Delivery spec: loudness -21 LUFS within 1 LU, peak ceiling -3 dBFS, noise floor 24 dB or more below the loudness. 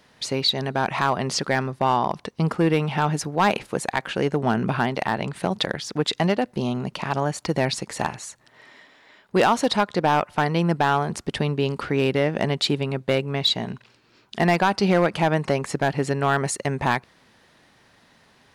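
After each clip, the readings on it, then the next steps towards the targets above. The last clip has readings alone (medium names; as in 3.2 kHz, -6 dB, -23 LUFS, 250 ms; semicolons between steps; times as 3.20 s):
clipped samples 0.4%; clipping level -11.5 dBFS; loudness -23.5 LUFS; peak level -11.5 dBFS; loudness target -21.0 LUFS
-> clip repair -11.5 dBFS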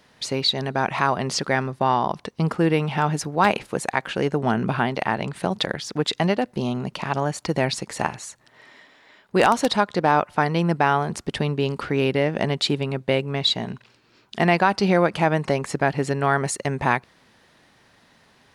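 clipped samples 0.0%; loudness -23.0 LUFS; peak level -2.5 dBFS; loudness target -21.0 LUFS
-> trim +2 dB; peak limiter -3 dBFS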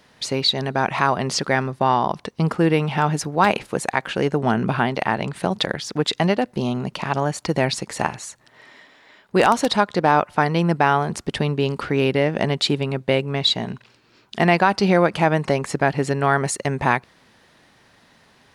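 loudness -21.0 LUFS; peak level -3.0 dBFS; noise floor -56 dBFS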